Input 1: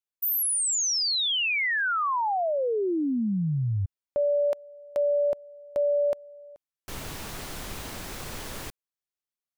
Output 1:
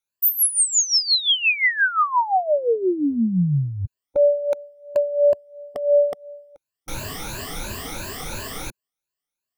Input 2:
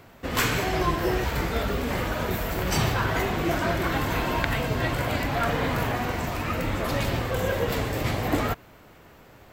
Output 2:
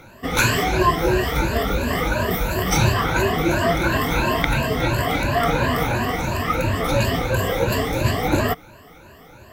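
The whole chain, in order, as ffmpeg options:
ffmpeg -i in.wav -af "afftfilt=real='re*pow(10,16/40*sin(2*PI*(1.4*log(max(b,1)*sr/1024/100)/log(2)-(2.9)*(pts-256)/sr)))':imag='im*pow(10,16/40*sin(2*PI*(1.4*log(max(b,1)*sr/1024/100)/log(2)-(2.9)*(pts-256)/sr)))':win_size=1024:overlap=0.75,volume=3dB" out.wav

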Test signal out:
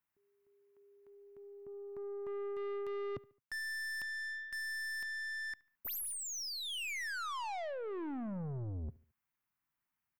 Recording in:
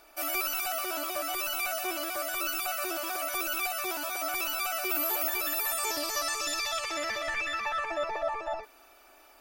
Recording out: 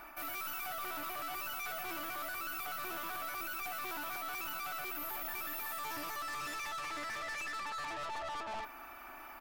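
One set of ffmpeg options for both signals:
ffmpeg -i in.wav -filter_complex "[0:a]equalizer=frequency=125:width_type=o:width=1:gain=6,equalizer=frequency=250:width_type=o:width=1:gain=4,equalizer=frequency=500:width_type=o:width=1:gain=-12,equalizer=frequency=1000:width_type=o:width=1:gain=6,equalizer=frequency=2000:width_type=o:width=1:gain=4,equalizer=frequency=4000:width_type=o:width=1:gain=-10,equalizer=frequency=8000:width_type=o:width=1:gain=-11,areverse,acompressor=threshold=-37dB:ratio=8,areverse,aeval=exprs='(tanh(224*val(0)+0.2)-tanh(0.2))/224':channel_layout=same,asplit=2[link_01][link_02];[link_02]adelay=72,lowpass=frequency=3500:poles=1,volume=-22dB,asplit=2[link_03][link_04];[link_04]adelay=72,lowpass=frequency=3500:poles=1,volume=0.44,asplit=2[link_05][link_06];[link_06]adelay=72,lowpass=frequency=3500:poles=1,volume=0.44[link_07];[link_01][link_03][link_05][link_07]amix=inputs=4:normalize=0,volume=8dB" out.wav

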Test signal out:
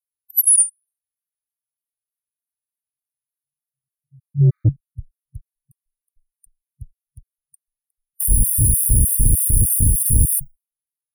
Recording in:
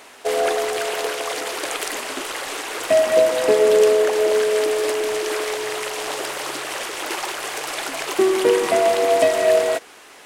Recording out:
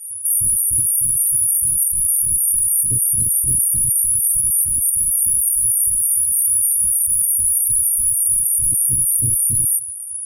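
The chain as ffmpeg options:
ffmpeg -i in.wav -filter_complex "[0:a]afftfilt=real='re*(1-between(b*sr/4096,120,9200))':imag='im*(1-between(b*sr/4096,120,9200))':win_size=4096:overlap=0.75,acrossover=split=3000[link_01][link_02];[link_02]acompressor=threshold=-43dB:ratio=4:attack=1:release=60[link_03];[link_01][link_03]amix=inputs=2:normalize=0,afftdn=noise_reduction=30:noise_floor=-55,superequalizer=7b=0.251:9b=1.58:16b=3.55,acontrast=77,apsyclip=30dB,afreqshift=14,afftfilt=real='re*gt(sin(2*PI*3.3*pts/sr)*(1-2*mod(floor(b*sr/1024/1200),2)),0)':imag='im*gt(sin(2*PI*3.3*pts/sr)*(1-2*mod(floor(b*sr/1024/1200),2)),0)':win_size=1024:overlap=0.75,volume=-8.5dB" out.wav

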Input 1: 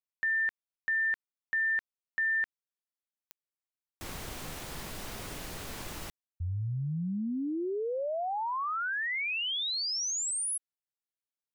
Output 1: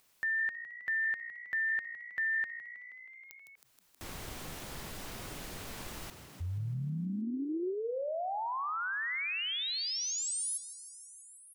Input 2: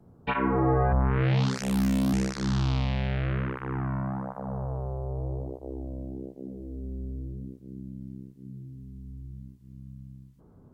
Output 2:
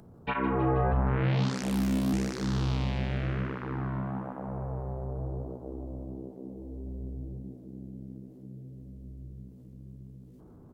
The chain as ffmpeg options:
ffmpeg -i in.wav -filter_complex "[0:a]asplit=8[link_01][link_02][link_03][link_04][link_05][link_06][link_07][link_08];[link_02]adelay=159,afreqshift=59,volume=-13dB[link_09];[link_03]adelay=318,afreqshift=118,volume=-16.9dB[link_10];[link_04]adelay=477,afreqshift=177,volume=-20.8dB[link_11];[link_05]adelay=636,afreqshift=236,volume=-24.6dB[link_12];[link_06]adelay=795,afreqshift=295,volume=-28.5dB[link_13];[link_07]adelay=954,afreqshift=354,volume=-32.4dB[link_14];[link_08]adelay=1113,afreqshift=413,volume=-36.3dB[link_15];[link_01][link_09][link_10][link_11][link_12][link_13][link_14][link_15]amix=inputs=8:normalize=0,acompressor=mode=upward:threshold=-42dB:ratio=2.5:attack=1.3:release=31:knee=2.83:detection=peak,volume=-3dB" out.wav

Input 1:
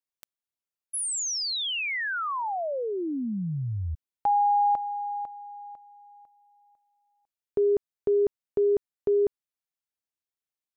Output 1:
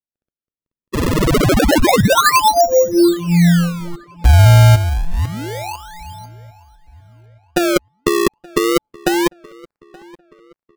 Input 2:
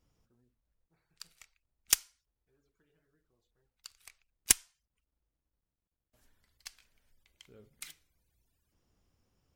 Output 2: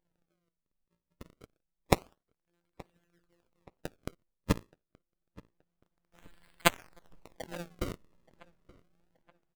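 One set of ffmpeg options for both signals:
ffmpeg -i in.wav -filter_complex "[0:a]agate=range=-7dB:threshold=-56dB:ratio=16:release=95:detection=rms,dynaudnorm=framelen=190:gausssize=11:maxgain=16.5dB,afftfilt=real='hypot(re,im)*cos(PI*b)':imag='0':win_size=1024:overlap=0.75,acrusher=samples=33:mix=1:aa=0.000001:lfo=1:lforange=52.8:lforate=0.27,asplit=2[link_01][link_02];[link_02]adelay=875,lowpass=frequency=3200:poles=1,volume=-23.5dB,asplit=2[link_03][link_04];[link_04]adelay=875,lowpass=frequency=3200:poles=1,volume=0.43,asplit=2[link_05][link_06];[link_06]adelay=875,lowpass=frequency=3200:poles=1,volume=0.43[link_07];[link_03][link_05][link_07]amix=inputs=3:normalize=0[link_08];[link_01][link_08]amix=inputs=2:normalize=0,volume=5dB" out.wav

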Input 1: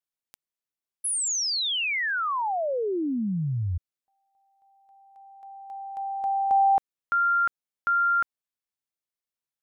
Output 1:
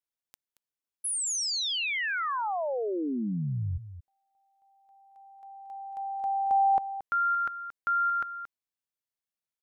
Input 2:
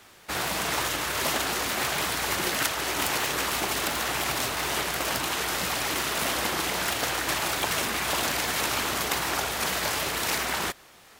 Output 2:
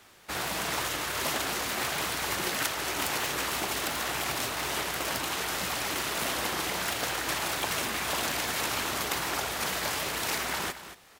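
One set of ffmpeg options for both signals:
ffmpeg -i in.wav -af "aecho=1:1:227:0.237,volume=-3.5dB" out.wav

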